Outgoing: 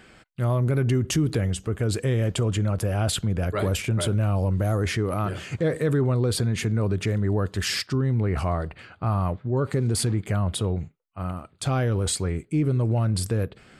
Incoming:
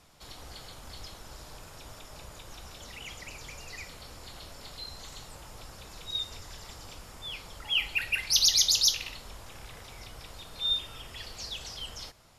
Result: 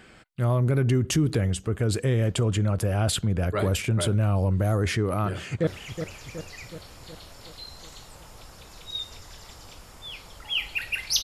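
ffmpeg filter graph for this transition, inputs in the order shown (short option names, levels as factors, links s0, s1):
-filter_complex "[0:a]apad=whole_dur=11.23,atrim=end=11.23,atrim=end=5.672[s0];[1:a]atrim=start=2.868:end=8.43[s1];[s0][s1]acrossfade=d=0.004:c1=hsin:c2=hsin,asplit=2[s2][s3];[s3]afade=t=in:st=5.26:d=0.01,afade=t=out:st=5.67:d=0.01,aecho=0:1:370|740|1110|1480|1850|2220|2590|2960:0.375837|0.225502|0.135301|0.0811809|0.0487085|0.0292251|0.0175351|0.010521[s4];[s2][s4]amix=inputs=2:normalize=0"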